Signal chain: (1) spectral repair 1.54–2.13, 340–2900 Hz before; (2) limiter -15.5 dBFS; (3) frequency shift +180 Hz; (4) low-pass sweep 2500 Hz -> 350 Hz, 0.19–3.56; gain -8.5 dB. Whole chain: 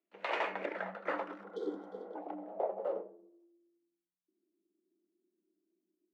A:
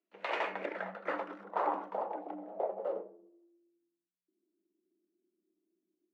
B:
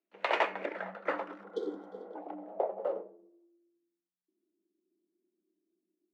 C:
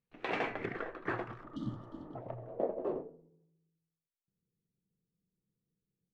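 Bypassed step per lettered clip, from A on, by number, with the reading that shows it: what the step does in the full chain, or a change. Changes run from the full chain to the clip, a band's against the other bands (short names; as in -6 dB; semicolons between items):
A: 1, 1 kHz band +4.0 dB; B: 2, crest factor change +4.0 dB; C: 3, 250 Hz band +4.5 dB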